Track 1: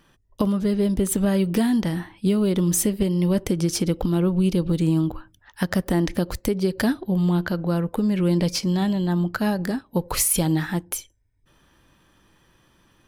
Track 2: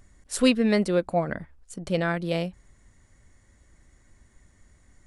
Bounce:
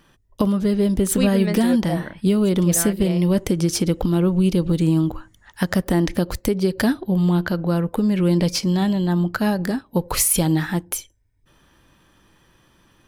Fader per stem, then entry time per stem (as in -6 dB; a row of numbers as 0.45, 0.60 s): +2.5, -4.0 dB; 0.00, 0.75 s